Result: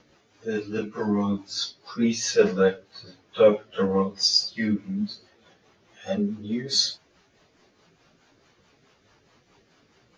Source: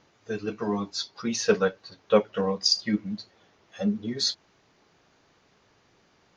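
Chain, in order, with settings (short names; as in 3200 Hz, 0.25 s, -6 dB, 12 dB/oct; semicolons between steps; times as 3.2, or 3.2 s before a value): rotary speaker horn 7.5 Hz; plain phase-vocoder stretch 1.6×; gain +7.5 dB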